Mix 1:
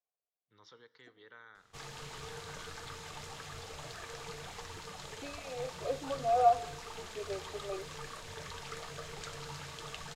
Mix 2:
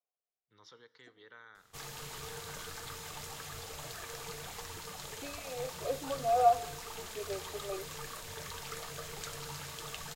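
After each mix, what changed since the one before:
master: remove air absorption 58 m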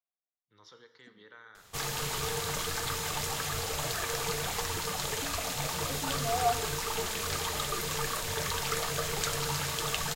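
first voice: send +10.0 dB; second voice: remove resonant high-pass 440 Hz; background +11.0 dB

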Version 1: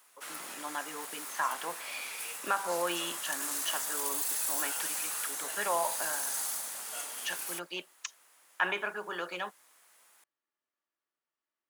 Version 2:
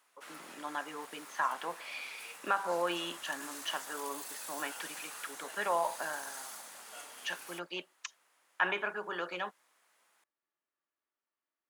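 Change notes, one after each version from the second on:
background -4.5 dB; master: add high shelf 6500 Hz -11 dB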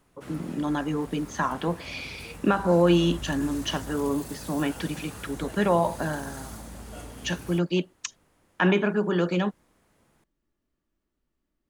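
speech: remove LPF 1600 Hz 6 dB/oct; master: remove HPF 1000 Hz 12 dB/oct

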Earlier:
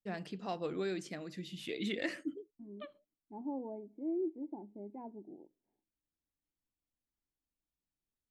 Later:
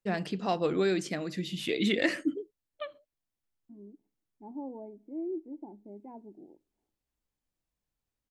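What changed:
first voice +9.5 dB; second voice: entry +1.10 s

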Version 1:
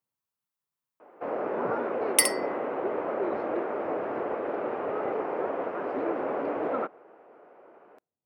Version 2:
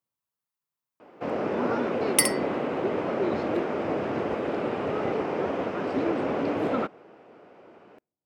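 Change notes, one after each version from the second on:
first sound: remove three-band isolator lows -15 dB, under 340 Hz, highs -20 dB, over 2000 Hz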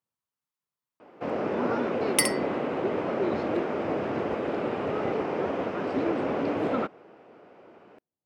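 first sound: send -6.0 dB; master: add high shelf 11000 Hz -7.5 dB

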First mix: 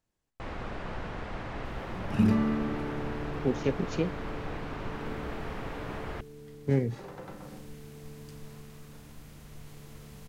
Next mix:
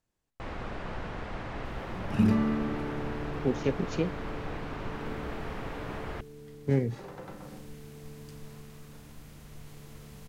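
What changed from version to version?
none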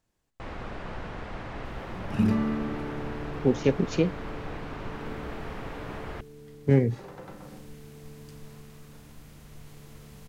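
speech +5.5 dB

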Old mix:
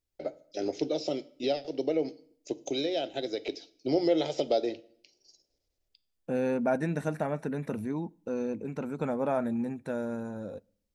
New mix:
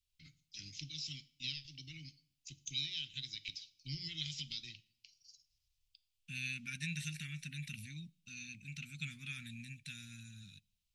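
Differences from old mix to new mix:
second voice: add weighting filter D; master: add Chebyshev band-stop 140–2600 Hz, order 3

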